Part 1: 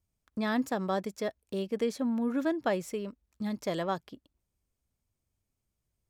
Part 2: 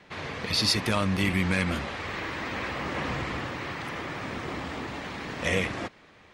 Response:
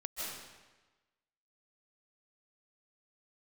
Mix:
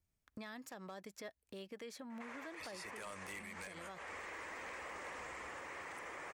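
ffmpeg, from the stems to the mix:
-filter_complex "[0:a]equalizer=frequency=1900:width=1.5:gain=4.5,volume=-4dB,asplit=2[link_01][link_02];[1:a]equalizer=frequency=125:width_type=o:width=1:gain=-12,equalizer=frequency=250:width_type=o:width=1:gain=-4,equalizer=frequency=500:width_type=o:width=1:gain=7,equalizer=frequency=1000:width_type=o:width=1:gain=7,equalizer=frequency=2000:width_type=o:width=1:gain=9,equalizer=frequency=4000:width_type=o:width=1:gain=-10,equalizer=frequency=8000:width_type=o:width=1:gain=12,adelay=2100,volume=-3dB[link_03];[link_02]apad=whole_len=371769[link_04];[link_03][link_04]sidechaincompress=threshold=-39dB:ratio=6:attack=12:release=228[link_05];[link_01][link_05]amix=inputs=2:normalize=0,acrossover=split=590|3500[link_06][link_07][link_08];[link_06]acompressor=threshold=-45dB:ratio=4[link_09];[link_07]acompressor=threshold=-39dB:ratio=4[link_10];[link_08]acompressor=threshold=-44dB:ratio=4[link_11];[link_09][link_10][link_11]amix=inputs=3:normalize=0,aeval=exprs='0.0355*(abs(mod(val(0)/0.0355+3,4)-2)-1)':channel_layout=same,alimiter=level_in=15.5dB:limit=-24dB:level=0:latency=1:release=272,volume=-15.5dB"

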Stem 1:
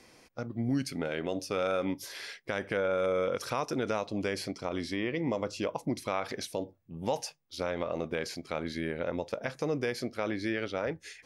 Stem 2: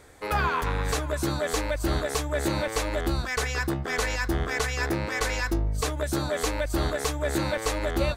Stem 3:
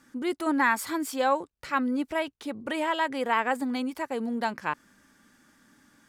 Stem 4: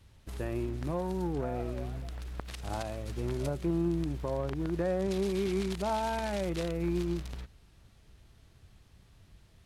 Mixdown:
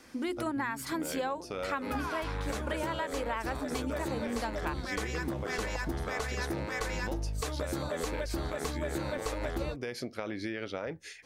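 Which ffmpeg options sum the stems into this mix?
ffmpeg -i stem1.wav -i stem2.wav -i stem3.wav -i stem4.wav -filter_complex "[0:a]acompressor=threshold=-31dB:ratio=6,volume=0dB[link_01];[1:a]adynamicequalizer=threshold=0.00891:dfrequency=1600:dqfactor=0.7:tfrequency=1600:tqfactor=0.7:attack=5:release=100:ratio=0.375:range=1.5:mode=cutabove:tftype=highshelf,adelay=1600,volume=-2dB[link_02];[2:a]bandreject=frequency=50:width_type=h:width=6,bandreject=frequency=100:width_type=h:width=6,bandreject=frequency=150:width_type=h:width=6,bandreject=frequency=200:width_type=h:width=6,bandreject=frequency=250:width_type=h:width=6,bandreject=frequency=300:width_type=h:width=6,bandreject=frequency=350:width_type=h:width=6,volume=1.5dB[link_03];[3:a]volume=-14dB[link_04];[link_01][link_02][link_03][link_04]amix=inputs=4:normalize=0,acompressor=threshold=-30dB:ratio=10" out.wav

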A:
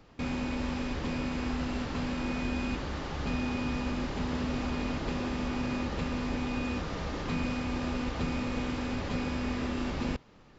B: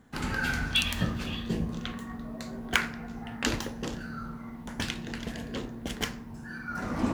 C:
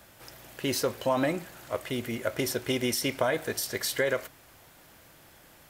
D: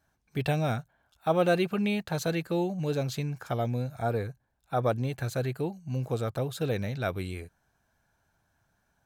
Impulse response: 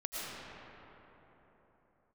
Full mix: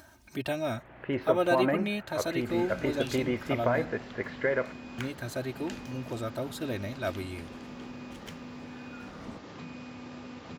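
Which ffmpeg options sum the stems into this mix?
-filter_complex "[0:a]highpass=frequency=100:width=0.5412,highpass=frequency=100:width=1.3066,adelay=2300,volume=-11.5dB[link_01];[1:a]adelay=2250,volume=-16dB[link_02];[2:a]lowpass=frequency=2200:width=0.5412,lowpass=frequency=2200:width=1.3066,adelay=450,volume=-0.5dB[link_03];[3:a]highpass=72,aecho=1:1:3.2:0.74,volume=-3.5dB,asplit=3[link_04][link_05][link_06];[link_04]atrim=end=3.85,asetpts=PTS-STARTPTS,afade=type=out:start_time=3.846:duration=0.004:curve=hsin[link_07];[link_05]atrim=start=3.85:end=4.98,asetpts=PTS-STARTPTS,volume=0[link_08];[link_06]atrim=start=4.98,asetpts=PTS-STARTPTS,afade=type=in:duration=0.004:curve=hsin[link_09];[link_07][link_08][link_09]concat=n=3:v=0:a=1[link_10];[link_01][link_02][link_03][link_10]amix=inputs=4:normalize=0,acompressor=mode=upward:threshold=-39dB:ratio=2.5"

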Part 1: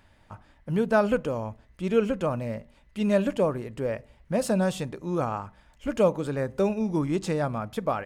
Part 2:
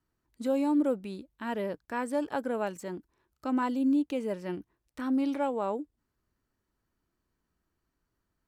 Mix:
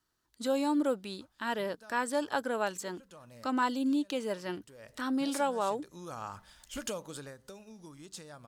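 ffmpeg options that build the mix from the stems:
ffmpeg -i stem1.wav -i stem2.wav -filter_complex "[0:a]acompressor=threshold=-30dB:ratio=6,adynamicequalizer=threshold=0.00316:dfrequency=2400:dqfactor=0.7:tfrequency=2400:tqfactor=0.7:attack=5:release=100:ratio=0.375:range=2.5:mode=cutabove:tftype=highshelf,adelay=900,volume=-7.5dB,afade=type=in:start_time=4.75:duration=0.37:silence=0.266073,afade=type=out:start_time=7.02:duration=0.34:silence=0.298538[link_01];[1:a]lowpass=frequency=1600:poles=1,lowshelf=frequency=350:gain=-5.5,volume=-0.5dB,asplit=2[link_02][link_03];[link_03]apad=whole_len=394818[link_04];[link_01][link_04]sidechaincompress=threshold=-42dB:ratio=5:attack=16:release=600[link_05];[link_05][link_02]amix=inputs=2:normalize=0,equalizer=frequency=1700:width=0.81:gain=9,aexciter=amount=7.8:drive=5.5:freq=3300" out.wav

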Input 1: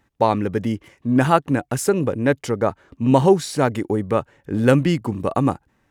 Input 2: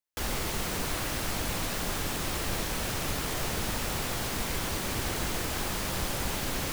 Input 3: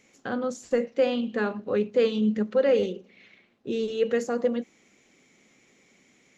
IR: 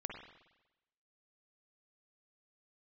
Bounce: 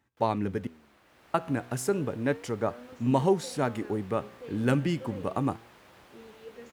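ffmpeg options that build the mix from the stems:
-filter_complex "[0:a]bandreject=frequency=510:width=14,volume=-4.5dB,asplit=3[link_01][link_02][link_03];[link_01]atrim=end=0.67,asetpts=PTS-STARTPTS,afade=type=out:start_time=0.666:duration=0.004:curve=hsin[link_04];[link_02]atrim=start=0.67:end=1.34,asetpts=PTS-STARTPTS,volume=0[link_05];[link_03]atrim=start=1.34,asetpts=PTS-STARTPTS,afade=type=in:duration=0.004:curve=hsin[link_06];[link_04][link_05][link_06]concat=n=3:v=0:a=1[link_07];[1:a]bass=frequency=250:gain=-8,treble=frequency=4000:gain=-13,volume=-14.5dB,afade=type=in:start_time=1.03:duration=0.47:silence=0.421697[link_08];[2:a]adelay=2450,volume=-18dB[link_09];[link_07][link_08][link_09]amix=inputs=3:normalize=0,highpass=63,flanger=delay=8:depth=8.9:regen=88:speed=0.34:shape=sinusoidal"

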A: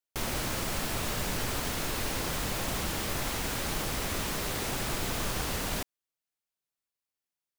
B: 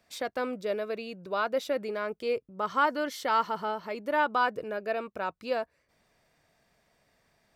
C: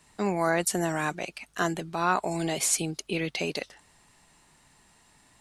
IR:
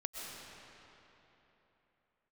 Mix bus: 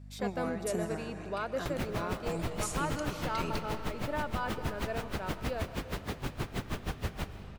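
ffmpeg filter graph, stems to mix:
-filter_complex "[0:a]acrossover=split=3900[link_01][link_02];[link_02]acompressor=threshold=-46dB:ratio=4:attack=1:release=60[link_03];[link_01][link_03]amix=inputs=2:normalize=0,aeval=exprs='val(0)*pow(10,-33*(0.5-0.5*cos(2*PI*6.3*n/s))/20)':channel_layout=same,adelay=1500,volume=1.5dB,asplit=2[link_04][link_05];[link_05]volume=-11dB[link_06];[1:a]aeval=exprs='val(0)+0.00501*(sin(2*PI*50*n/s)+sin(2*PI*2*50*n/s)/2+sin(2*PI*3*50*n/s)/3+sin(2*PI*4*50*n/s)/4+sin(2*PI*5*50*n/s)/5)':channel_layout=same,volume=-7.5dB,asplit=3[link_07][link_08][link_09];[link_08]volume=-9.5dB[link_10];[2:a]alimiter=limit=-17dB:level=0:latency=1,volume=-13.5dB,asplit=2[link_11][link_12];[link_12]volume=-5dB[link_13];[link_09]apad=whole_len=238417[link_14];[link_11][link_14]sidechaingate=range=-33dB:threshold=-40dB:ratio=16:detection=peak[link_15];[link_04][link_07]amix=inputs=2:normalize=0,alimiter=level_in=4.5dB:limit=-24dB:level=0:latency=1:release=327,volume=-4.5dB,volume=0dB[link_16];[3:a]atrim=start_sample=2205[link_17];[link_06][link_10][link_13]amix=inputs=3:normalize=0[link_18];[link_18][link_17]afir=irnorm=-1:irlink=0[link_19];[link_15][link_16][link_19]amix=inputs=3:normalize=0,equalizer=frequency=110:width_type=o:width=2.9:gain=7"

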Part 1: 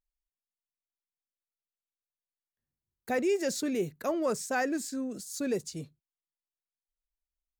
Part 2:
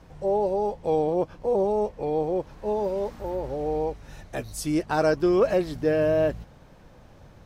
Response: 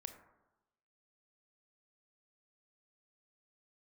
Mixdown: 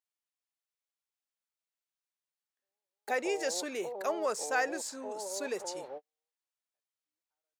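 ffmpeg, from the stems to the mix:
-filter_complex "[0:a]equalizer=frequency=16000:width=1:gain=-12,volume=1.5dB,asplit=2[link_01][link_02];[1:a]lowpass=2500,acompressor=threshold=-30dB:ratio=6,adelay=2400,volume=-3.5dB[link_03];[link_02]apad=whole_len=434783[link_04];[link_03][link_04]sidechaingate=range=-58dB:threshold=-54dB:ratio=16:detection=peak[link_05];[link_01][link_05]amix=inputs=2:normalize=0,highpass=590"

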